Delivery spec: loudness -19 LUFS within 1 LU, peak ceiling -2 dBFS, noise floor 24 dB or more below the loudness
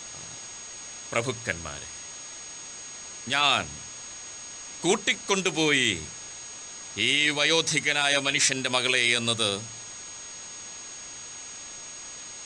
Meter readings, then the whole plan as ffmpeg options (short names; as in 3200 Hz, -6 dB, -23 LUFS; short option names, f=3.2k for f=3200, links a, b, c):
steady tone 6600 Hz; tone level -40 dBFS; noise floor -41 dBFS; noise floor target -48 dBFS; loudness -24.0 LUFS; peak -8.5 dBFS; loudness target -19.0 LUFS
-> -af "bandreject=f=6.6k:w=30"
-af "afftdn=nr=7:nf=-41"
-af "volume=5dB"